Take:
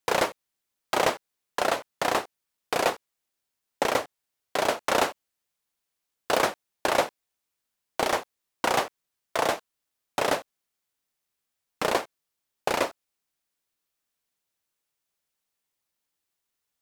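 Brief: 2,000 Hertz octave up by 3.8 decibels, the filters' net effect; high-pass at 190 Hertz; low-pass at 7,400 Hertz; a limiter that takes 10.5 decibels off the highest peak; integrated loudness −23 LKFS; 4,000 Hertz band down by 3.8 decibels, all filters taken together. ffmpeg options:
ffmpeg -i in.wav -af "highpass=190,lowpass=7400,equalizer=frequency=2000:width_type=o:gain=6.5,equalizer=frequency=4000:width_type=o:gain=-7.5,volume=9.5dB,alimiter=limit=-8dB:level=0:latency=1" out.wav

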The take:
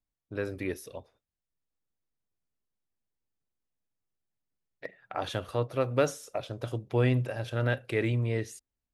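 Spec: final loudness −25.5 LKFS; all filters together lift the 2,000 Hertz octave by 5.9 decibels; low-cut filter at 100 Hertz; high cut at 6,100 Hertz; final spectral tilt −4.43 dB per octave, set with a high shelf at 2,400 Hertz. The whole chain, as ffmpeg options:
ffmpeg -i in.wav -af "highpass=100,lowpass=6100,equalizer=frequency=2000:width_type=o:gain=3.5,highshelf=frequency=2400:gain=8.5,volume=5dB" out.wav

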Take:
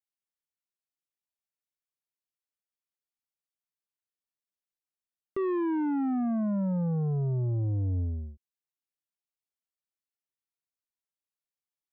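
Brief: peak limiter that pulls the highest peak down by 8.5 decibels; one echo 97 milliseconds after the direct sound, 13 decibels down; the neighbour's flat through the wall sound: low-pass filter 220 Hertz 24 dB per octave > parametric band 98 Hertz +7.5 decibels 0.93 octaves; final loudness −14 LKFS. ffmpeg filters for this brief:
ffmpeg -i in.wav -af "alimiter=level_in=11dB:limit=-24dB:level=0:latency=1,volume=-11dB,lowpass=frequency=220:width=0.5412,lowpass=frequency=220:width=1.3066,equalizer=frequency=98:width_type=o:width=0.93:gain=7.5,aecho=1:1:97:0.224,volume=20.5dB" out.wav

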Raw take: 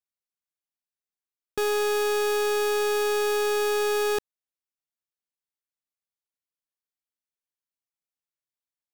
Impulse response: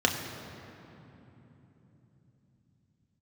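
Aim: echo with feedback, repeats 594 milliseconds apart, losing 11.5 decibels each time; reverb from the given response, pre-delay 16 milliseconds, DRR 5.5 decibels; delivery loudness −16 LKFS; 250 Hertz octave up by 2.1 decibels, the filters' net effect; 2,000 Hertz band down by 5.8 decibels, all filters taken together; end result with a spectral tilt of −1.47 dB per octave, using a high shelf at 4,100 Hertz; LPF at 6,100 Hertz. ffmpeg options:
-filter_complex "[0:a]lowpass=6100,equalizer=frequency=250:width_type=o:gain=6.5,equalizer=frequency=2000:width_type=o:gain=-9,highshelf=frequency=4100:gain=5.5,aecho=1:1:594|1188|1782:0.266|0.0718|0.0194,asplit=2[link_01][link_02];[1:a]atrim=start_sample=2205,adelay=16[link_03];[link_02][link_03]afir=irnorm=-1:irlink=0,volume=-18.5dB[link_04];[link_01][link_04]amix=inputs=2:normalize=0,volume=9dB"

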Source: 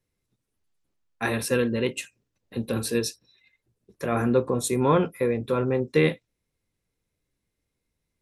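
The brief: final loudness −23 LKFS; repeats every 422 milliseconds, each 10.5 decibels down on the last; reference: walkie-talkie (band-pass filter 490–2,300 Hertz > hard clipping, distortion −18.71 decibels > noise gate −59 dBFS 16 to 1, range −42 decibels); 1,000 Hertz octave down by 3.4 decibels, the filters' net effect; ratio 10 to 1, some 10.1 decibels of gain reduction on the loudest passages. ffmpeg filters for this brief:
ffmpeg -i in.wav -af "equalizer=frequency=1000:width_type=o:gain=-3.5,acompressor=threshold=-26dB:ratio=10,highpass=490,lowpass=2300,aecho=1:1:422|844|1266:0.299|0.0896|0.0269,asoftclip=type=hard:threshold=-28dB,agate=range=-42dB:threshold=-59dB:ratio=16,volume=15.5dB" out.wav

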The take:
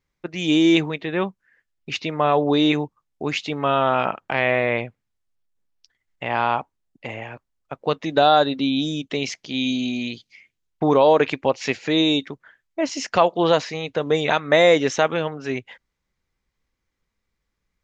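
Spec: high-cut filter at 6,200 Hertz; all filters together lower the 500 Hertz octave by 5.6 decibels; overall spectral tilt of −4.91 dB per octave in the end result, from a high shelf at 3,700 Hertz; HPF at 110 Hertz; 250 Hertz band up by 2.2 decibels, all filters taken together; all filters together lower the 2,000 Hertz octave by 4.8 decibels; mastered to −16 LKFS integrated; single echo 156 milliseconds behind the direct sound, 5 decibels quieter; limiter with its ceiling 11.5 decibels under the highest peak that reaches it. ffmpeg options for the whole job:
ffmpeg -i in.wav -af "highpass=110,lowpass=6200,equalizer=frequency=250:width_type=o:gain=6.5,equalizer=frequency=500:width_type=o:gain=-8.5,equalizer=frequency=2000:width_type=o:gain=-7,highshelf=frequency=3700:gain=4.5,alimiter=limit=-17.5dB:level=0:latency=1,aecho=1:1:156:0.562,volume=11.5dB" out.wav

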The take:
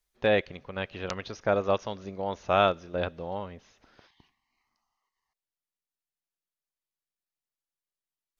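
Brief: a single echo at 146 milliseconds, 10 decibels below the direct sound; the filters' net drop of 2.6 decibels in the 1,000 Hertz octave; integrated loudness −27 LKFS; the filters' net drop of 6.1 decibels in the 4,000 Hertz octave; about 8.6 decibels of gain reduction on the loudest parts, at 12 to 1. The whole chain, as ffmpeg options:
ffmpeg -i in.wav -af "equalizer=frequency=1000:width_type=o:gain=-3.5,equalizer=frequency=4000:width_type=o:gain=-7.5,acompressor=threshold=-28dB:ratio=12,aecho=1:1:146:0.316,volume=9dB" out.wav

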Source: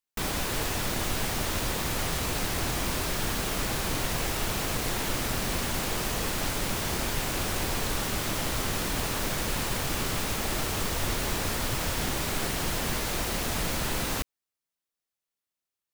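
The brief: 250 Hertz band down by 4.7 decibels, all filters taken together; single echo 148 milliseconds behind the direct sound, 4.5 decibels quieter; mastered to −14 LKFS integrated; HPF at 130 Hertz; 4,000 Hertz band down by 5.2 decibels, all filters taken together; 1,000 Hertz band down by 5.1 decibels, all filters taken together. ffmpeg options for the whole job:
ffmpeg -i in.wav -af "highpass=130,equalizer=frequency=250:width_type=o:gain=-5.5,equalizer=frequency=1000:width_type=o:gain=-6,equalizer=frequency=4000:width_type=o:gain=-6.5,aecho=1:1:148:0.596,volume=16.5dB" out.wav

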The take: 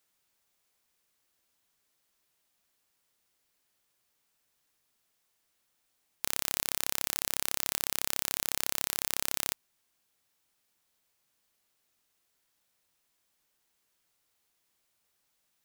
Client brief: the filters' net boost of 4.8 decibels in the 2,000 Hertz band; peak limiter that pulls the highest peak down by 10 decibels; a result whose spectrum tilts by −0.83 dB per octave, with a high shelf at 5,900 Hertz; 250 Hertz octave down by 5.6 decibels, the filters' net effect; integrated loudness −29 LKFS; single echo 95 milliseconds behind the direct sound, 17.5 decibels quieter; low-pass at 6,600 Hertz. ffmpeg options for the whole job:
ffmpeg -i in.wav -af "lowpass=6600,equalizer=frequency=250:width_type=o:gain=-8,equalizer=frequency=2000:width_type=o:gain=5.5,highshelf=frequency=5900:gain=4.5,alimiter=limit=-18.5dB:level=0:latency=1,aecho=1:1:95:0.133,volume=14.5dB" out.wav

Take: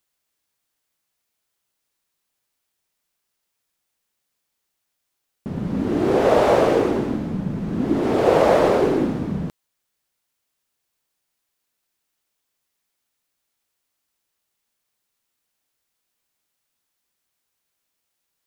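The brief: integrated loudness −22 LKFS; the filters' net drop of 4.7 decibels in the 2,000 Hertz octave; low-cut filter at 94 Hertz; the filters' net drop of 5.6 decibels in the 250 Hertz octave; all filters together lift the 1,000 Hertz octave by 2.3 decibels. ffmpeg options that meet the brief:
ffmpeg -i in.wav -af "highpass=94,equalizer=frequency=250:width_type=o:gain=-8,equalizer=frequency=1000:width_type=o:gain=5.5,equalizer=frequency=2000:width_type=o:gain=-8.5,volume=-1.5dB" out.wav

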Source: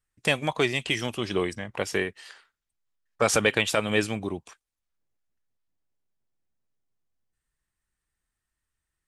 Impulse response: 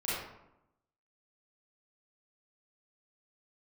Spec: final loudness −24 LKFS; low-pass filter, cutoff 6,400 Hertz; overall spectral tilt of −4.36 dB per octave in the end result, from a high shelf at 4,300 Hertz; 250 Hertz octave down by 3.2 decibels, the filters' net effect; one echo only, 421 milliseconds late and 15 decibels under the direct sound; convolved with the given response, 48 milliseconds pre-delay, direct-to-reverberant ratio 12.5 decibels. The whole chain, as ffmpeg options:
-filter_complex "[0:a]lowpass=6400,equalizer=frequency=250:width_type=o:gain=-4.5,highshelf=frequency=4300:gain=-6.5,aecho=1:1:421:0.178,asplit=2[link_01][link_02];[1:a]atrim=start_sample=2205,adelay=48[link_03];[link_02][link_03]afir=irnorm=-1:irlink=0,volume=-19dB[link_04];[link_01][link_04]amix=inputs=2:normalize=0,volume=4dB"

